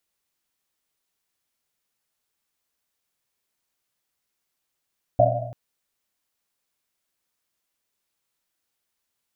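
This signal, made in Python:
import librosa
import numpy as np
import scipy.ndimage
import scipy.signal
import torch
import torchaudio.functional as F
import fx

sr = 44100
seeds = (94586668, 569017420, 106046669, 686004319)

y = fx.risset_drum(sr, seeds[0], length_s=0.34, hz=120.0, decay_s=1.37, noise_hz=650.0, noise_width_hz=130.0, noise_pct=65)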